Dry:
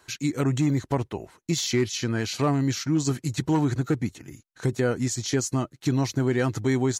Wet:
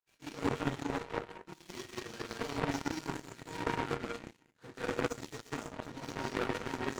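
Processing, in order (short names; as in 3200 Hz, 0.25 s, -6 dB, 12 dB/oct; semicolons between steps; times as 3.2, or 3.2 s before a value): phase scrambler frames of 50 ms; resonator 470 Hz, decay 0.19 s, harmonics all, mix 80%; overdrive pedal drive 36 dB, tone 1100 Hz, clips at -21.5 dBFS; non-linear reverb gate 0.23 s rising, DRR 0.5 dB; power-law curve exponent 3; gain +3 dB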